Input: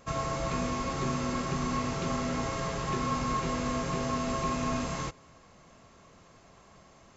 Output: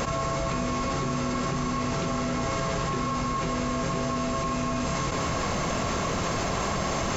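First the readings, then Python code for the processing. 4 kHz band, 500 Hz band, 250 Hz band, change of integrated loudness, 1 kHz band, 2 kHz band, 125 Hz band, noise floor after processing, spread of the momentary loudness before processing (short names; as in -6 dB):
+6.5 dB, +5.5 dB, +4.5 dB, +3.5 dB, +5.0 dB, +6.5 dB, +5.0 dB, -28 dBFS, 2 LU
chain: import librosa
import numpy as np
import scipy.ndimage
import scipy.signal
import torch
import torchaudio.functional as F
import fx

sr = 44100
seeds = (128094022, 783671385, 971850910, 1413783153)

y = fx.env_flatten(x, sr, amount_pct=100)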